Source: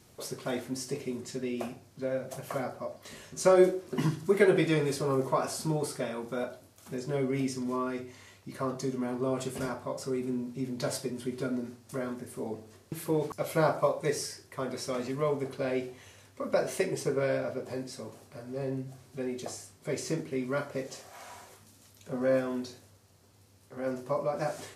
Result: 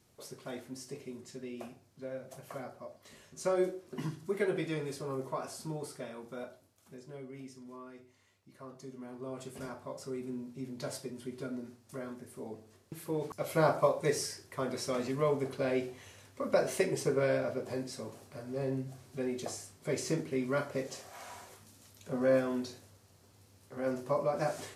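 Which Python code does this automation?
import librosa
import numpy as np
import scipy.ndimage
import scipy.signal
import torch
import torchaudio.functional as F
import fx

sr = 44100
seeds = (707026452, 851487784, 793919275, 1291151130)

y = fx.gain(x, sr, db=fx.line((6.47, -9.0), (7.26, -16.5), (8.58, -16.5), (9.86, -7.0), (13.06, -7.0), (13.71, -0.5)))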